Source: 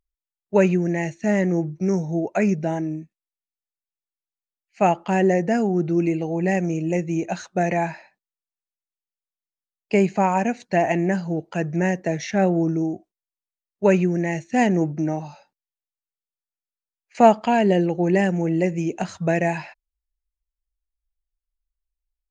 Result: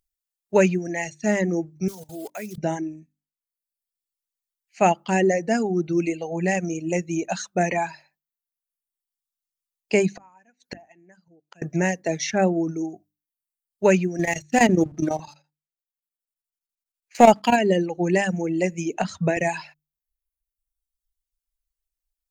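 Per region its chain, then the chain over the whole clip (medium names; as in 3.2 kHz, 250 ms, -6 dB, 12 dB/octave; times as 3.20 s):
1.88–2.58 s: block-companded coder 5-bit + peaking EQ 98 Hz -13 dB 0.81 oct + level held to a coarse grid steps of 16 dB
10.16–11.62 s: peaking EQ 1.7 kHz +3 dB + inverted gate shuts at -24 dBFS, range -29 dB
14.19–17.56 s: waveshaping leveller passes 1 + square tremolo 12 Hz, depth 65%, duty 75%
18.94–19.37 s: treble shelf 6.5 kHz -11 dB + three bands compressed up and down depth 70%
whole clip: treble shelf 4.1 kHz +11 dB; hum notches 50/100/150/200/250/300 Hz; reverb removal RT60 1.3 s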